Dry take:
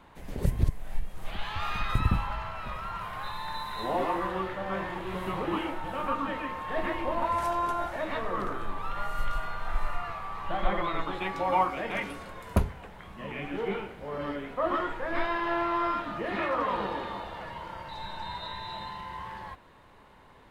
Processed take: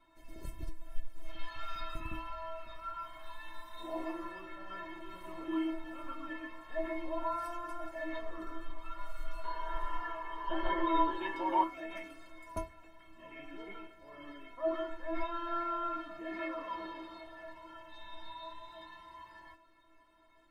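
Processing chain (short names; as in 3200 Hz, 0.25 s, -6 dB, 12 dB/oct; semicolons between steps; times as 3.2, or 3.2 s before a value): 9.44–11.64 small resonant body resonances 440/930/1600/2900 Hz, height 17 dB, ringing for 20 ms; metallic resonator 320 Hz, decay 0.28 s, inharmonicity 0.008; gain +4 dB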